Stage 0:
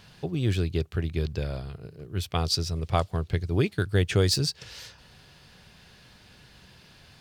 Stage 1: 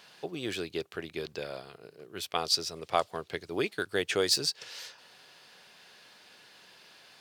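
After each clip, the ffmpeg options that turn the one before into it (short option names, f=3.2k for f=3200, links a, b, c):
-af "highpass=410"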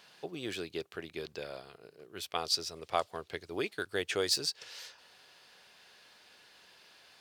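-af "asubboost=boost=5.5:cutoff=58,volume=-3.5dB"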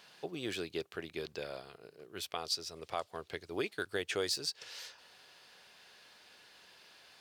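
-af "alimiter=limit=-22dB:level=0:latency=1:release=360"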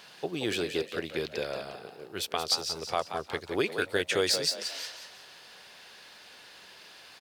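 -filter_complex "[0:a]asplit=5[a][b][c][d][e];[b]adelay=178,afreqshift=68,volume=-8dB[f];[c]adelay=356,afreqshift=136,volume=-16.9dB[g];[d]adelay=534,afreqshift=204,volume=-25.7dB[h];[e]adelay=712,afreqshift=272,volume=-34.6dB[i];[a][f][g][h][i]amix=inputs=5:normalize=0,volume=7.5dB"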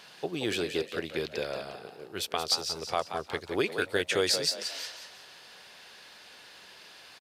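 -af "aresample=32000,aresample=44100"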